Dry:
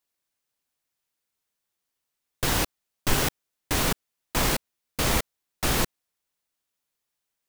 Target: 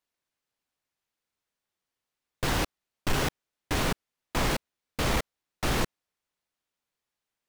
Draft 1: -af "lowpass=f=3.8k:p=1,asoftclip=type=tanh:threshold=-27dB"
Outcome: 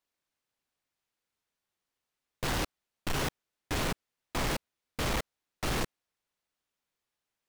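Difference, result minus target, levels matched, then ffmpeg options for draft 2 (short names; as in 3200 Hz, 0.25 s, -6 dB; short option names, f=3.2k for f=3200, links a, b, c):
soft clip: distortion +9 dB
-af "lowpass=f=3.8k:p=1,asoftclip=type=tanh:threshold=-17.5dB"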